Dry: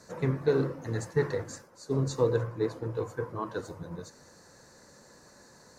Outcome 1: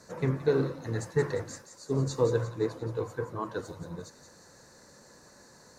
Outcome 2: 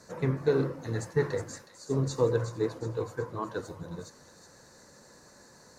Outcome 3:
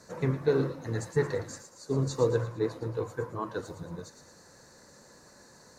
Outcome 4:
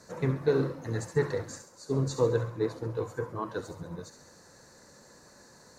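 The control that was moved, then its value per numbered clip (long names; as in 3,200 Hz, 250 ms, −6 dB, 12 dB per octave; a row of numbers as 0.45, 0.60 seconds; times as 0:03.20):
delay with a high-pass on its return, delay time: 175, 367, 113, 68 milliseconds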